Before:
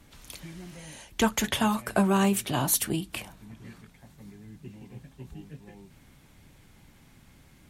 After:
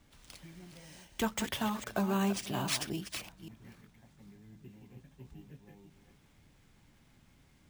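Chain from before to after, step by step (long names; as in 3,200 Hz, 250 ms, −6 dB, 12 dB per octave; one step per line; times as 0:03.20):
delay that plays each chunk backwards 268 ms, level −9.5 dB
bad sample-rate conversion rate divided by 3×, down none, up hold
level −8.5 dB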